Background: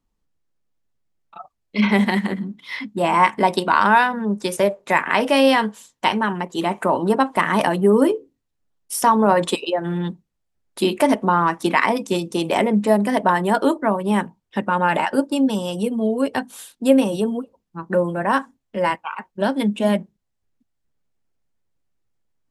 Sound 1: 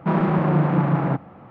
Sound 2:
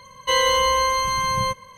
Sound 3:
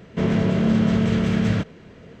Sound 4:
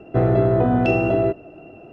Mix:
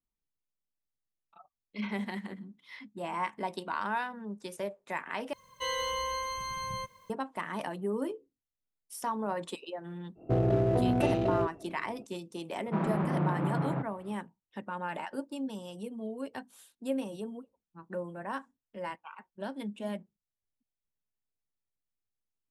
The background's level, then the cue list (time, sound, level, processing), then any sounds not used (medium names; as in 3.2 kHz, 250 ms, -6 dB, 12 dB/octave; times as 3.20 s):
background -18 dB
5.33 s: replace with 2 -14.5 dB + bit crusher 9-bit
10.15 s: add 4 -8.5 dB, fades 0.05 s + local Wiener filter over 25 samples
12.66 s: add 1 -11 dB
not used: 3